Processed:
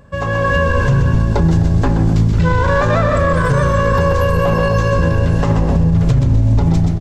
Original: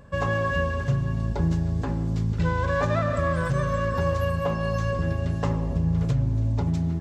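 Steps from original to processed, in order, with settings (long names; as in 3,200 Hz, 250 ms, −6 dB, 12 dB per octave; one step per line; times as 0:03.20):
automatic gain control gain up to 11.5 dB
echo with shifted repeats 127 ms, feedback 44%, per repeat −60 Hz, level −7 dB
boost into a limiter +8.5 dB
level −4.5 dB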